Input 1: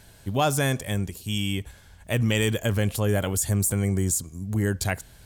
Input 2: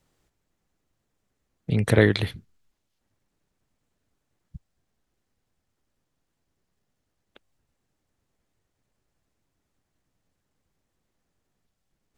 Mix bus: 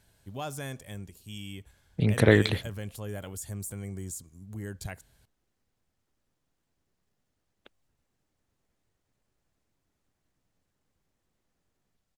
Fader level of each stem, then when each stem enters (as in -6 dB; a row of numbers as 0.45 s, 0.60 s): -14.0 dB, -1.5 dB; 0.00 s, 0.30 s